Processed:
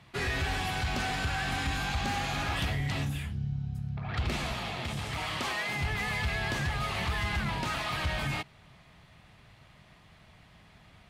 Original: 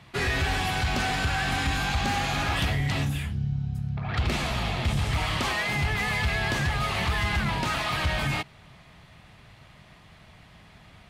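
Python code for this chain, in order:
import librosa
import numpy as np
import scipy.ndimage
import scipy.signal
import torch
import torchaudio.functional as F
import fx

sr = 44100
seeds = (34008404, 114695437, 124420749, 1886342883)

y = fx.highpass(x, sr, hz=180.0, slope=6, at=(4.54, 5.81))
y = y * librosa.db_to_amplitude(-5.0)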